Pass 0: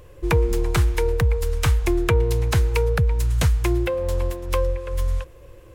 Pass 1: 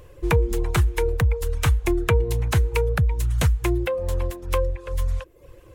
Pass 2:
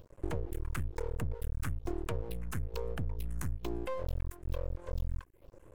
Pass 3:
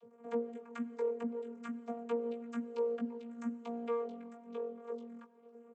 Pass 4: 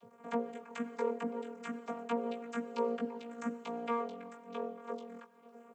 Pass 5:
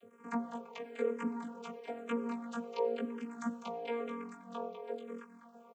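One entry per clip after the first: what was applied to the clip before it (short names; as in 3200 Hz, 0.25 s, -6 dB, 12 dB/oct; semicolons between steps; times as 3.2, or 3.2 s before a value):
reverb removal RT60 0.54 s; dynamic EQ 5000 Hz, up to -5 dB, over -50 dBFS, Q 2.6
compressor, threshold -24 dBFS, peak gain reduction 10 dB; phaser stages 4, 1.1 Hz, lowest notch 560–4600 Hz; half-wave rectifier; gain -5.5 dB
vocoder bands 32, saw 234 Hz; doubler 17 ms -5 dB; reverb RT60 3.4 s, pre-delay 72 ms, DRR 16.5 dB
spectral limiter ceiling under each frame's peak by 15 dB; gain +1 dB
echo 0.2 s -8 dB; endless phaser -1 Hz; gain +2 dB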